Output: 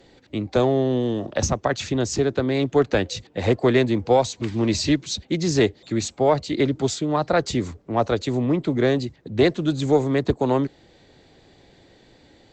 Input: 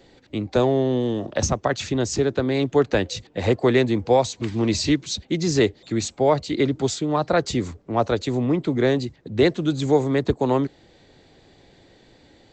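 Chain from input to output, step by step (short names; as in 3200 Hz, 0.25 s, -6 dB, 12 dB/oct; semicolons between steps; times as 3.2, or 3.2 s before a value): added harmonics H 2 -24 dB, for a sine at -6 dBFS; Doppler distortion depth 0.14 ms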